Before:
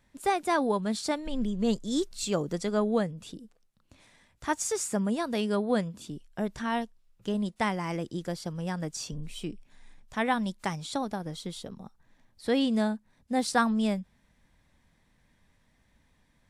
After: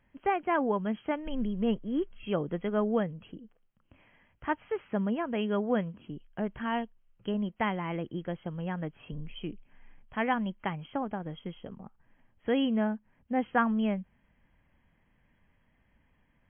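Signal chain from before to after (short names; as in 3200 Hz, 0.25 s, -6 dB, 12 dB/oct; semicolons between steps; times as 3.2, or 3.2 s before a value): brick-wall FIR low-pass 3300 Hz; gain -1.5 dB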